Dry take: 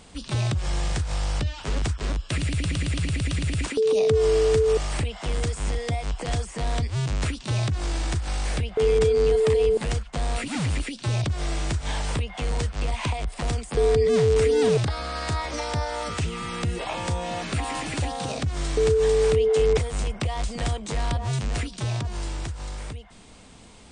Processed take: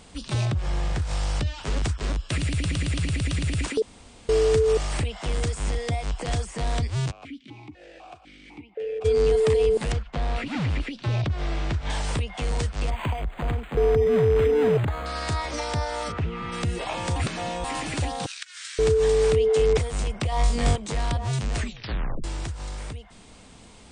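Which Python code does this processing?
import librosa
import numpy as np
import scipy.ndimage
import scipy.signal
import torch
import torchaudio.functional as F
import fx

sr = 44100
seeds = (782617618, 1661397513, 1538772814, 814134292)

y = fx.high_shelf(x, sr, hz=4100.0, db=-11.0, at=(0.45, 1.02))
y = fx.vowel_held(y, sr, hz=4.0, at=(7.1, 9.04), fade=0.02)
y = fx.lowpass(y, sr, hz=3600.0, slope=12, at=(9.92, 11.9))
y = fx.resample_linear(y, sr, factor=8, at=(12.9, 15.06))
y = fx.lowpass(y, sr, hz=fx.line((16.11, 1600.0), (16.51, 2900.0)), slope=12, at=(16.11, 16.51), fade=0.02)
y = fx.ellip_highpass(y, sr, hz=1500.0, order=4, stop_db=70, at=(18.26, 18.79))
y = fx.room_flutter(y, sr, wall_m=3.6, rt60_s=0.45, at=(20.3, 20.76))
y = fx.edit(y, sr, fx.room_tone_fill(start_s=3.82, length_s=0.47),
    fx.reverse_span(start_s=17.16, length_s=0.48),
    fx.tape_stop(start_s=21.56, length_s=0.68), tone=tone)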